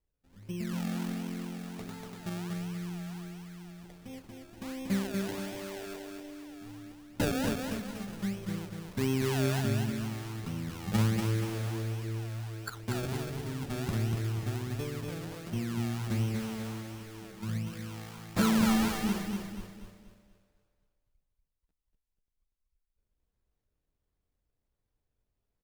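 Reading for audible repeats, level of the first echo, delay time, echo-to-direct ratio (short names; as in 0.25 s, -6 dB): 4, -4.0 dB, 0.24 s, -3.0 dB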